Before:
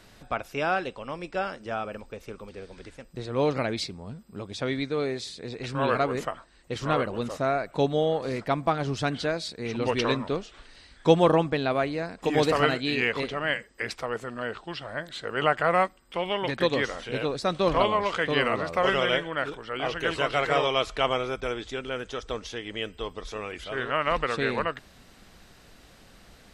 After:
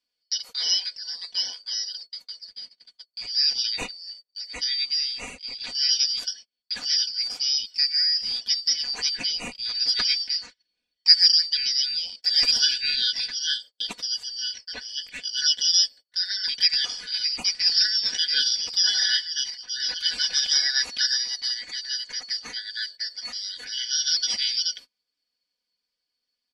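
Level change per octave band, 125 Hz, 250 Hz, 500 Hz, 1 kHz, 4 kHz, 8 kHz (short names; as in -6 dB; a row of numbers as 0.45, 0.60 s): under -20 dB, under -20 dB, under -25 dB, under -20 dB, +15.0 dB, +17.0 dB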